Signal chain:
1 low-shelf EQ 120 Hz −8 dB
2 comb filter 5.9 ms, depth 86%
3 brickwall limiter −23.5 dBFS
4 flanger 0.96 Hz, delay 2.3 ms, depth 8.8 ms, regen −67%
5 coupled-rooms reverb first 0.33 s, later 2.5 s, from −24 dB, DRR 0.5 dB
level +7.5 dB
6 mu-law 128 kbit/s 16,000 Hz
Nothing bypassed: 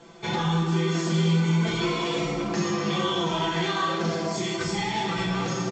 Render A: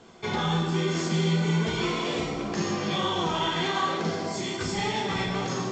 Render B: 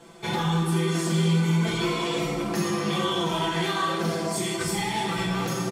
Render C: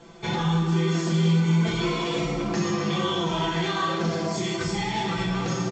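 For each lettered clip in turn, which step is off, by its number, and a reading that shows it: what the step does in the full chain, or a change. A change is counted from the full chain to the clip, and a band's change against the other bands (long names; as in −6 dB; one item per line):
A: 2, 125 Hz band −2.0 dB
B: 6, 8 kHz band +3.5 dB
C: 1, 125 Hz band +2.0 dB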